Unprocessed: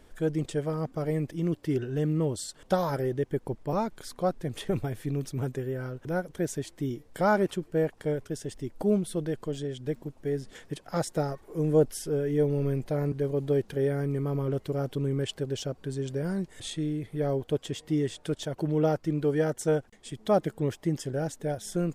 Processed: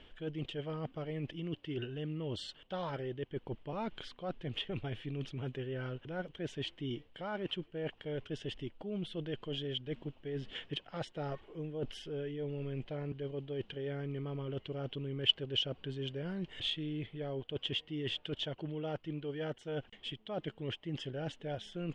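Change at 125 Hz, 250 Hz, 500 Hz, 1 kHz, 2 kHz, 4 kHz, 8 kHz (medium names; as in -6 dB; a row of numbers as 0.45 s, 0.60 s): -10.0 dB, -11.0 dB, -12.0 dB, -12.0 dB, -6.5 dB, +6.0 dB, under -20 dB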